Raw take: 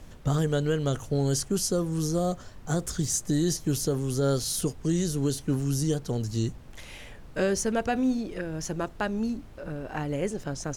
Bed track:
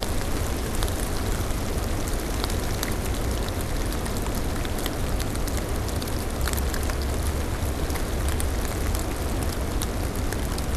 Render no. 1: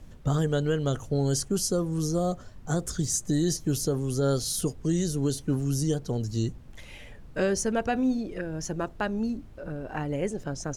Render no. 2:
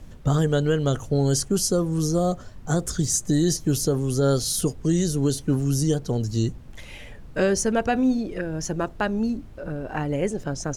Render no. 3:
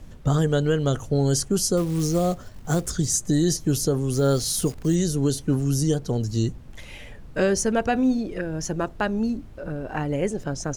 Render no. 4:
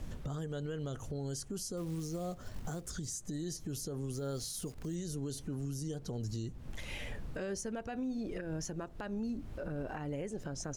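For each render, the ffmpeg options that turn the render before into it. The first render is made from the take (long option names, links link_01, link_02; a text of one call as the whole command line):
ffmpeg -i in.wav -af "afftdn=noise_reduction=6:noise_floor=-46" out.wav
ffmpeg -i in.wav -af "volume=4.5dB" out.wav
ffmpeg -i in.wav -filter_complex "[0:a]asettb=1/sr,asplit=3[link_01][link_02][link_03];[link_01]atrim=end=1.774[link_04];[link_02]atrim=start=1.77:end=2.91,asetpts=PTS-STARTPTS,afade=type=in:duration=0.004:curve=qsin,afade=type=out:start_time=1.136:duration=0.004:curve=qsin,acrusher=bits=5:mode=log:mix=0:aa=0.000001[link_05];[link_03]atrim=start=2.906[link_06];[link_04][link_05]acrossfade=duration=0.004:curve1=hsin:curve2=qsin[link_07];[link_07][link_06]acrossfade=duration=0.004:curve1=qsin:curve2=hsin,asettb=1/sr,asplit=3[link_08][link_09][link_10];[link_08]atrim=end=4.134[link_11];[link_09]atrim=start=4.13:end=4.95,asetpts=PTS-STARTPTS,afade=type=in:duration=0.004:curve=qsin,afade=type=out:start_time=0.816:duration=0.004:curve=qsin,acrusher=bits=8:dc=4:mix=0:aa=0.000001[link_12];[link_10]atrim=start=4.946[link_13];[link_11][link_12]acrossfade=duration=0.004:curve1=hsin:curve2=qsin[link_14];[link_14][link_13]acrossfade=duration=0.004:curve1=qsin:curve2=hsin" out.wav
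ffmpeg -i in.wav -af "acompressor=threshold=-32dB:ratio=4,alimiter=level_in=7dB:limit=-24dB:level=0:latency=1:release=203,volume=-7dB" out.wav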